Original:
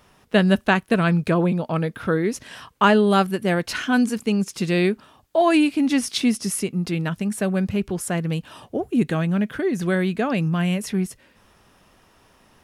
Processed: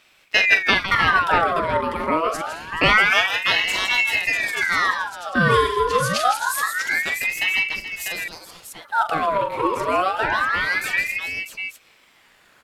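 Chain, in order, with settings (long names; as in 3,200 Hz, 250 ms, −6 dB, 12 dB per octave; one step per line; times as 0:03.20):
0:07.63–0:08.85: high-pass filter 1,400 Hz 12 dB per octave
on a send: multi-tap delay 42/160/213/429/646 ms −8.5/−8.5/−17.5/−14.5/−6.5 dB
on the sum: ring modulator whose carrier an LFO sweeps 1,600 Hz, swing 55%, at 0.26 Hz
level +1.5 dB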